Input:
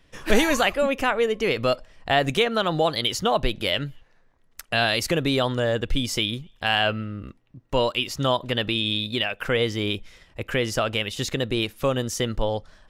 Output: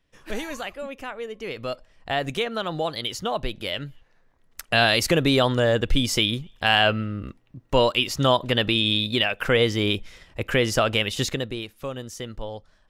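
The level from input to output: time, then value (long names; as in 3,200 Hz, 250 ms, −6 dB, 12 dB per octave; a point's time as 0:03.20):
0:01.17 −12 dB
0:02.10 −5 dB
0:03.76 −5 dB
0:04.72 +3 dB
0:11.22 +3 dB
0:11.63 −9 dB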